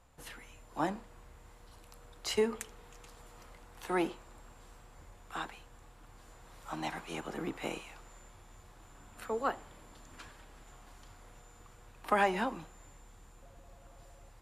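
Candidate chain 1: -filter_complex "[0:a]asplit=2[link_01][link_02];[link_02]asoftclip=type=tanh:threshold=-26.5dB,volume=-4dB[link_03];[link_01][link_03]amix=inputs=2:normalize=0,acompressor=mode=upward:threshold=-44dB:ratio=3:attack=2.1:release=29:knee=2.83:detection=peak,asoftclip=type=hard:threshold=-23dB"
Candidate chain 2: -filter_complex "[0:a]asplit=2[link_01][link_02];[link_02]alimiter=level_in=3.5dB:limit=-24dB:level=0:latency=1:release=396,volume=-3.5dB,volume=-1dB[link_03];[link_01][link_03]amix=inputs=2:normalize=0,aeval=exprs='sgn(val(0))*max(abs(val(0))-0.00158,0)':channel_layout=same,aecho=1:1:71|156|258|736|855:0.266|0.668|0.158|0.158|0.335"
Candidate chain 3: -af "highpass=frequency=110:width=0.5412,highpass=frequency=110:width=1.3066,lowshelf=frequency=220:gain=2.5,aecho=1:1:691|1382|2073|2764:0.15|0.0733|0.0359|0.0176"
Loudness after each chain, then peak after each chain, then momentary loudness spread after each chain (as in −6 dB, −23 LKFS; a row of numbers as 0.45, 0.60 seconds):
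−34.5, −33.5, −36.5 LKFS; −23.0, −13.0, −16.0 dBFS; 20, 23, 24 LU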